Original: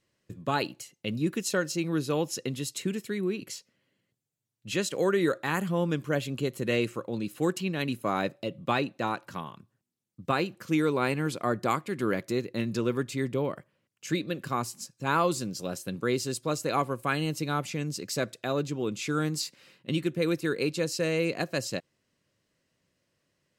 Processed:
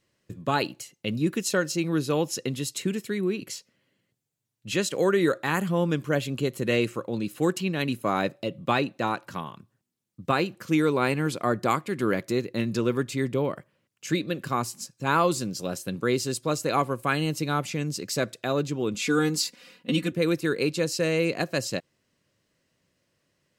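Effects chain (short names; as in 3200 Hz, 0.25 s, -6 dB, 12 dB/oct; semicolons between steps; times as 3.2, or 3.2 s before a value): 18.94–20.12 comb 4.1 ms, depth 95%; gain +3 dB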